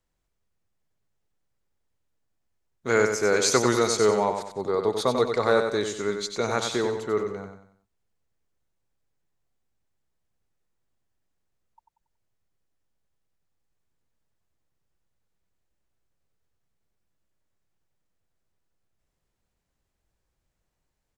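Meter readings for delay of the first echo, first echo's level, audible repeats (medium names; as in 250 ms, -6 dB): 93 ms, -6.5 dB, 4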